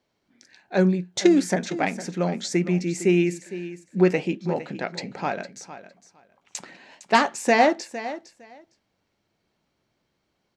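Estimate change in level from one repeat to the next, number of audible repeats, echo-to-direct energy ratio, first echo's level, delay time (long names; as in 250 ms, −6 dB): −16.0 dB, 2, −14.0 dB, −14.0 dB, 458 ms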